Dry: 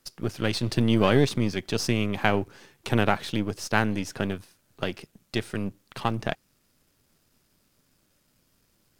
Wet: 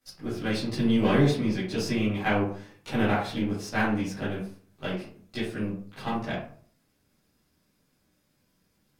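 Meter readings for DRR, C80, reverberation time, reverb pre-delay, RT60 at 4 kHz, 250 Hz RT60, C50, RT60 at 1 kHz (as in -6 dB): -12.0 dB, 8.5 dB, 0.50 s, 11 ms, 0.30 s, 0.55 s, 3.5 dB, 0.45 s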